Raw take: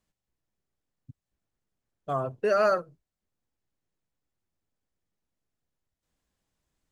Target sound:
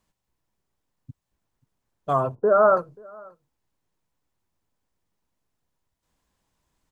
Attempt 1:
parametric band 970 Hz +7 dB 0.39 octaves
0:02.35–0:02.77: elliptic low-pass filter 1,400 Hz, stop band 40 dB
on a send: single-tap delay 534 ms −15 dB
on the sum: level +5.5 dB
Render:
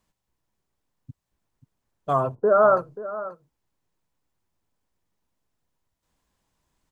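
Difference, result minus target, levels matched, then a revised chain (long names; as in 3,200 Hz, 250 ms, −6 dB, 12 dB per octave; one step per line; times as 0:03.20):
echo-to-direct +11 dB
parametric band 970 Hz +7 dB 0.39 octaves
0:02.35–0:02.77: elliptic low-pass filter 1,400 Hz, stop band 40 dB
on a send: single-tap delay 534 ms −26 dB
on the sum: level +5.5 dB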